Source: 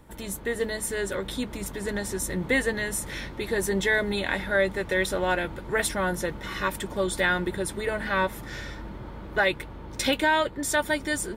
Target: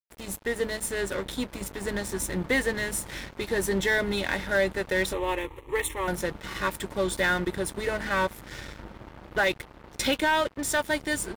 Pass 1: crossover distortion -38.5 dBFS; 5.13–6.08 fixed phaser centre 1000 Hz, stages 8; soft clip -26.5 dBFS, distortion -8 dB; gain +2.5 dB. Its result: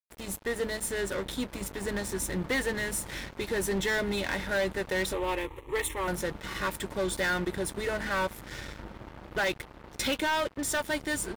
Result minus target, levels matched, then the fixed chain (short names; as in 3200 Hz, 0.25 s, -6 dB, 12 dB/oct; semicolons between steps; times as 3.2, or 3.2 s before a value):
soft clip: distortion +7 dB
crossover distortion -38.5 dBFS; 5.13–6.08 fixed phaser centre 1000 Hz, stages 8; soft clip -19 dBFS, distortion -15 dB; gain +2.5 dB